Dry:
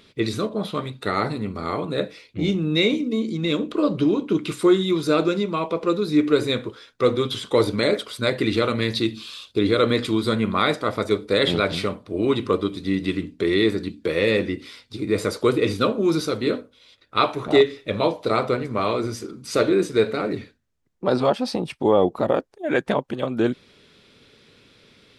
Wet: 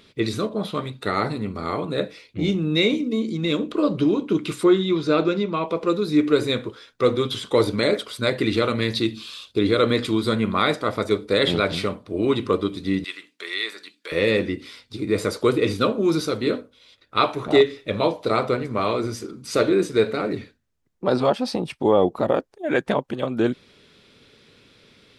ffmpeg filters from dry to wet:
-filter_complex "[0:a]asettb=1/sr,asplit=3[s0][s1][s2];[s0]atrim=end=4.644[s3];[s1]atrim=start=4.64:end=5.68,asetpts=PTS-STARTPTS,afade=t=in:d=0.004:c=qsin,afade=t=out:st=1.036:d=0.004:c=qsin,lowpass=4700[s4];[s2]atrim=start=5.676[s5];[s3][s4]acrossfade=d=0.004:c1=hsin:c2=qsin[s6];[s6][s5]acrossfade=d=0.004:c1=qsin:c2=hsin,asettb=1/sr,asplit=3[s7][s8][s9];[s7]atrim=end=13.044[s10];[s8]atrim=start=13.04:end=14.12,asetpts=PTS-STARTPTS,afade=t=in:d=0.004:c=qsin,afade=t=out:st=1.076:d=0.004:c=qsin,highpass=1200[s11];[s9]atrim=start=14.116[s12];[s10][s11]acrossfade=d=0.004:c1=hsin:c2=qsin[s13];[s13][s12]acrossfade=d=0.004:c1=qsin:c2=hsin"

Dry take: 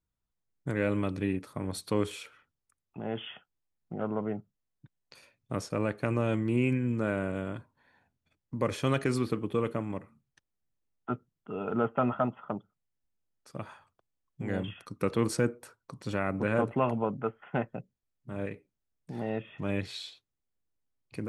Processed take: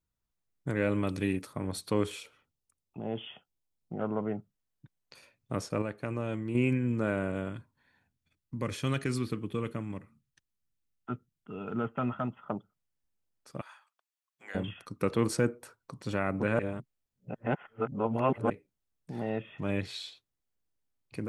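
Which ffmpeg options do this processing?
-filter_complex "[0:a]asettb=1/sr,asplit=3[s0][s1][s2];[s0]atrim=end=1.074[s3];[s1]atrim=start=1.07:end=1.47,asetpts=PTS-STARTPTS,afade=t=in:d=0.004:c=qsin,afade=t=out:st=0.396:d=0.004:c=qsin,highshelf=f=3700:g=11[s4];[s2]atrim=start=1.466[s5];[s3][s4]acrossfade=d=0.004:c1=hsin:c2=qsin[s6];[s6][s5]acrossfade=d=0.004:c1=qsin:c2=hsin,asettb=1/sr,asplit=3[s7][s8][s9];[s7]atrim=end=2.204[s10];[s8]atrim=start=2.2:end=3.94,asetpts=PTS-STARTPTS,afade=t=in:d=0.004:c=qsin,afade=t=out:st=1.736:d=0.004:c=qsin,equalizer=f=1600:w=1.5:g=-10.5[s11];[s9]atrim=start=3.936[s12];[s10][s11]acrossfade=d=0.004:c1=hsin:c2=qsin[s13];[s13][s12]acrossfade=d=0.004:c1=qsin:c2=hsin,asettb=1/sr,asplit=3[s14][s15][s16];[s14]atrim=end=7.494[s17];[s15]atrim=start=7.49:end=12.46,asetpts=PTS-STARTPTS,afade=t=in:d=0.004:c=qsin,afade=t=out:st=4.966:d=0.004:c=qsin,equalizer=f=670:t=o:w=2:g=-8.5[s18];[s16]atrim=start=12.456[s19];[s17][s18]acrossfade=d=0.004:c1=hsin:c2=qsin[s20];[s20][s19]acrossfade=d=0.004:c1=qsin:c2=hsin,asettb=1/sr,asplit=3[s21][s22][s23];[s21]atrim=end=13.614[s24];[s22]atrim=start=13.61:end=14.55,asetpts=PTS-STARTPTS,afade=t=in:d=0.004:c=qsin,afade=t=out:st=0.936:d=0.004:c=qsin,highpass=1200[s25];[s23]atrim=start=14.546[s26];[s24][s25]acrossfade=d=0.004:c1=hsin:c2=qsin[s27];[s27][s26]acrossfade=d=0.004:c1=qsin:c2=hsin,asplit=5[s28][s29][s30][s31][s32];[s28]atrim=end=5.822[s33];[s29]atrim=start=5.818:end=6.552,asetpts=PTS-STARTPTS,volume=0.531[s34];[s30]atrim=start=6.548:end=16.592[s35];[s31]atrim=start=16.588:end=18.502,asetpts=PTS-STARTPTS,areverse[s36];[s32]atrim=start=18.498[s37];[s33][s34]acrossfade=d=0.004:c1=hsin:c2=hsin[s38];[s38][s35]acrossfade=d=0.004:c1=hsin:c2=hsin[s39];[s39][s36]acrossfade=d=0.004:c1=hsin:c2=hsin[s40];[s40][s37]acrossfade=d=0.004:c1=hsin:c2=hsin"

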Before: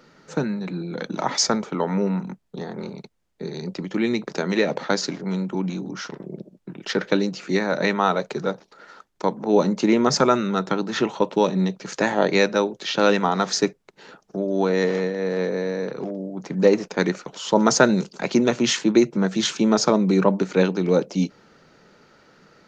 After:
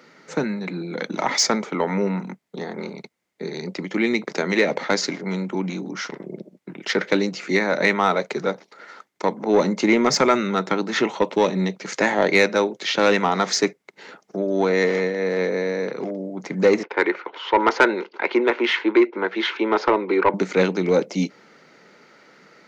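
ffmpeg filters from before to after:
-filter_complex "[0:a]asettb=1/sr,asplit=3[s0][s1][s2];[s0]atrim=end=16.834[s3];[s1]atrim=start=16.83:end=20.34,asetpts=PTS-STARTPTS,afade=t=in:d=0.004:c=qsin,afade=t=out:st=3.506:d=0.004:c=qsin,highpass=f=330:w=0.5412,highpass=f=330:w=1.3066,equalizer=f=350:t=q:w=4:g=4,equalizer=f=640:t=q:w=4:g=-5,equalizer=f=940:t=q:w=4:g=7,equalizer=f=1500:t=q:w=4:g=4,lowpass=f=3300:w=0.5412,lowpass=f=3300:w=1.3066[s4];[s2]atrim=start=20.336[s5];[s3][s4]acrossfade=d=0.004:c1=hsin:c2=qsin[s6];[s6][s5]acrossfade=d=0.004:c1=qsin:c2=hsin,highpass=200,acontrast=89,equalizer=f=2100:w=6:g=10,volume=0.562"

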